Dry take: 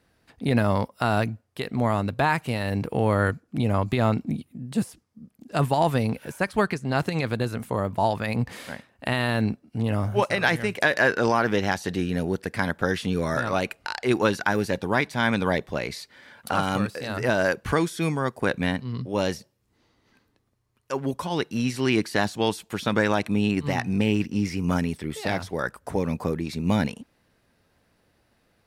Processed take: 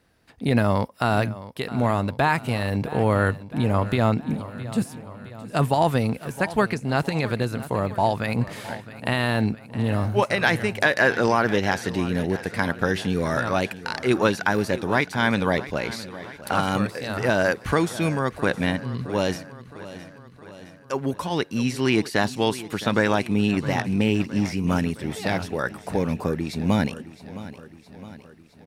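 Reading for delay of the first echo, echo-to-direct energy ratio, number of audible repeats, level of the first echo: 664 ms, -14.0 dB, 5, -16.0 dB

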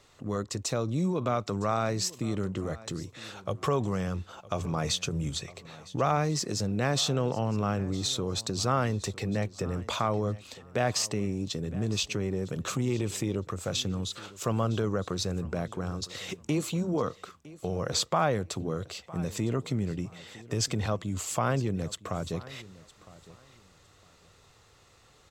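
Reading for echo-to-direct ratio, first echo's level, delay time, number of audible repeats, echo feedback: -19.5 dB, -19.5 dB, 959 ms, 2, 23%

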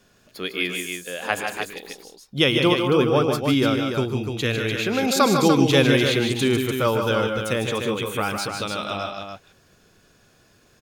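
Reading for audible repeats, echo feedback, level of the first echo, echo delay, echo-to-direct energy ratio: 4, no regular repeats, -18.0 dB, 111 ms, -2.5 dB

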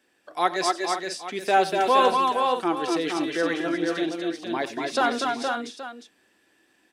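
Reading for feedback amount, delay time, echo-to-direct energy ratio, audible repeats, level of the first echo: no regular repeats, 91 ms, -0.5 dB, 5, -16.0 dB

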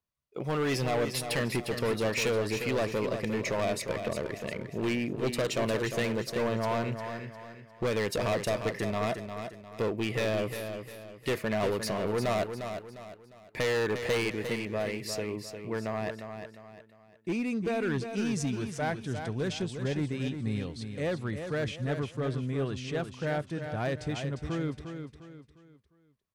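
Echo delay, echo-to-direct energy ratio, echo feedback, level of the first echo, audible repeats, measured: 353 ms, -7.5 dB, 37%, -8.0 dB, 4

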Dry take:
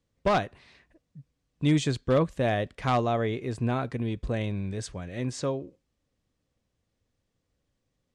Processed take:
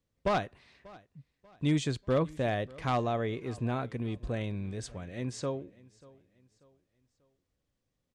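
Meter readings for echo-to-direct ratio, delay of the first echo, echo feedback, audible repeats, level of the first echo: -22.0 dB, 589 ms, 39%, 2, -22.5 dB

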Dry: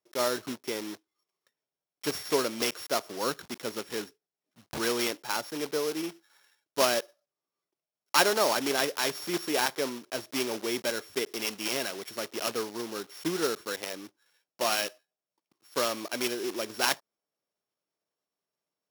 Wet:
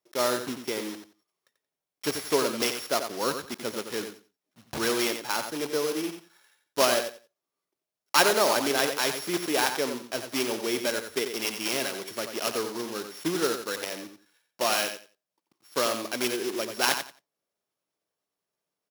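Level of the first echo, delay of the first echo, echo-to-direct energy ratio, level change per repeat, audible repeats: -8.0 dB, 89 ms, -8.0 dB, -14.5 dB, 2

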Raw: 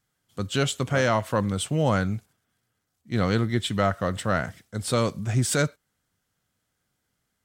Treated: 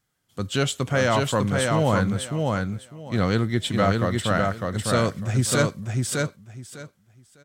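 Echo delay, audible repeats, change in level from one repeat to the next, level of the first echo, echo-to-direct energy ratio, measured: 602 ms, 3, -14.5 dB, -3.0 dB, -3.0 dB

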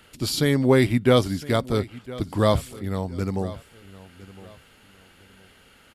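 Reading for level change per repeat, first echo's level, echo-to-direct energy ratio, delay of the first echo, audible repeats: -11.0 dB, -18.5 dB, -18.0 dB, 1010 ms, 2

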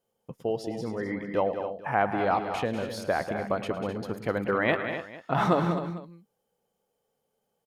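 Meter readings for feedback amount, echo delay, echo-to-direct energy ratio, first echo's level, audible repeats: no regular repeats, 109 ms, -6.0 dB, -15.5 dB, 5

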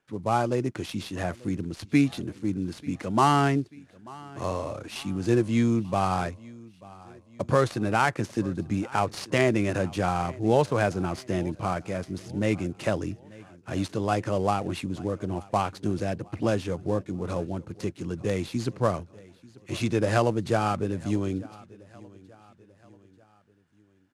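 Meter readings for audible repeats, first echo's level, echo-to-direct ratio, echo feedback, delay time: 2, -22.0 dB, -21.0 dB, 47%, 889 ms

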